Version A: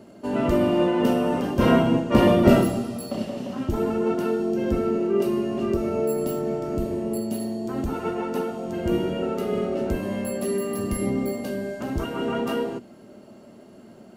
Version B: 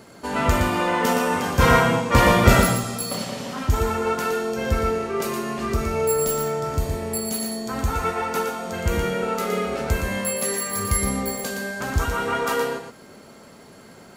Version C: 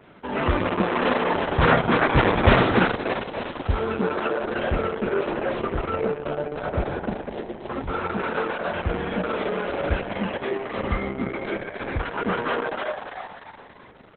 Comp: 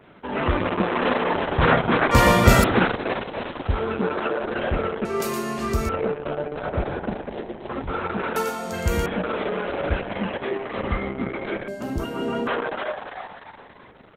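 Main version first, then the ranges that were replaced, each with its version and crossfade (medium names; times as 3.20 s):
C
2.11–2.64 s: from B
5.05–5.89 s: from B
8.36–9.06 s: from B
11.68–12.47 s: from A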